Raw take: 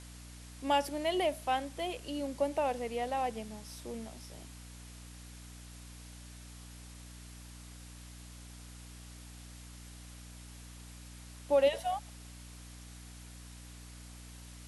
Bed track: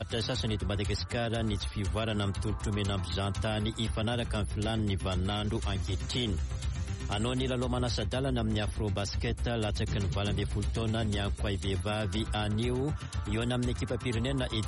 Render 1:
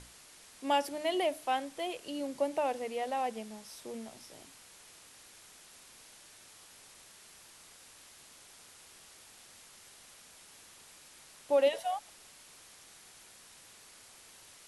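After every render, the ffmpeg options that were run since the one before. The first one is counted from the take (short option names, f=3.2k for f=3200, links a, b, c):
-af "bandreject=f=60:t=h:w=6,bandreject=f=120:t=h:w=6,bandreject=f=180:t=h:w=6,bandreject=f=240:t=h:w=6,bandreject=f=300:t=h:w=6"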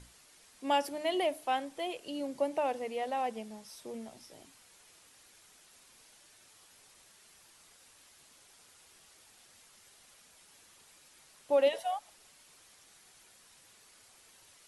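-af "afftdn=nr=6:nf=-56"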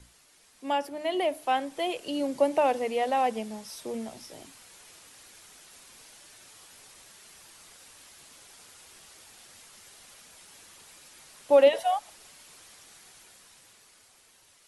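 -filter_complex "[0:a]acrossover=split=180|2700[a][b][c];[c]alimiter=level_in=13.5dB:limit=-24dB:level=0:latency=1:release=277,volume=-13.5dB[d];[a][b][d]amix=inputs=3:normalize=0,dynaudnorm=f=170:g=17:m=8dB"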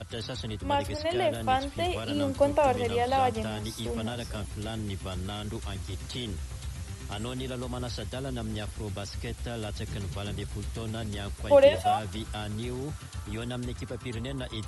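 -filter_complex "[1:a]volume=-4dB[a];[0:a][a]amix=inputs=2:normalize=0"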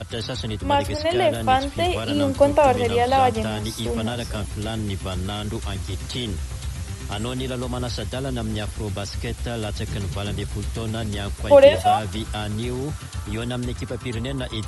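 -af "volume=7.5dB,alimiter=limit=-2dB:level=0:latency=1"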